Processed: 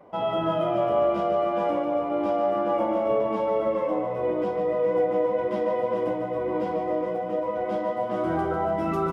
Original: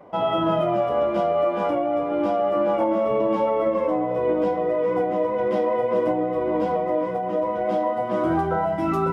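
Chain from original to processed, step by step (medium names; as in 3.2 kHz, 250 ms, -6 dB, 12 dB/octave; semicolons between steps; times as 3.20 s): doubling 41 ms -12 dB; on a send: feedback delay 147 ms, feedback 60%, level -7 dB; on the sum: trim -4.5 dB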